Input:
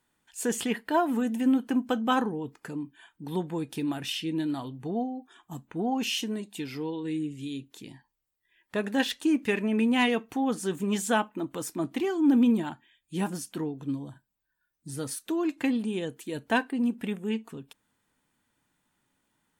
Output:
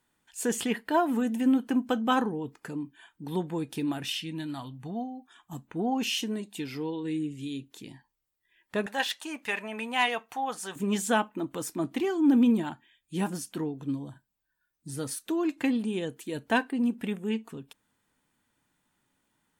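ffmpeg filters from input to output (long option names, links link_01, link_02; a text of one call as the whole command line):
ffmpeg -i in.wav -filter_complex "[0:a]asettb=1/sr,asplit=3[link_01][link_02][link_03];[link_01]atrim=end=4.194[link_04];[link_02]atrim=start=4.19:end=5.53,asetpts=PTS-STARTPTS,afade=type=in:duration=0.004:curve=qsin,afade=type=out:start_time=1.336:duration=0.004:curve=qsin,equalizer=frequency=400:width_type=o:width=1.1:gain=-10.5[link_05];[link_03]atrim=start=5.526[link_06];[link_04][link_05]acrossfade=duration=0.004:curve1=hsin:curve2=qsin[link_07];[link_07][link_06]acrossfade=duration=0.004:curve1=qsin:curve2=hsin,asettb=1/sr,asplit=3[link_08][link_09][link_10];[link_08]atrim=end=8.864[link_11];[link_09]atrim=start=8.86:end=10.76,asetpts=PTS-STARTPTS,afade=type=in:duration=0.004:curve=qsin,afade=type=out:start_time=1.896:duration=0.004:curve=qsin,lowshelf=frequency=490:width_type=q:width=1.5:gain=-12.5[link_12];[link_10]atrim=start=10.756[link_13];[link_11][link_12]acrossfade=duration=0.004:curve1=hsin:curve2=qsin[link_14];[link_14][link_13]acrossfade=duration=0.004:curve1=qsin:curve2=hsin" out.wav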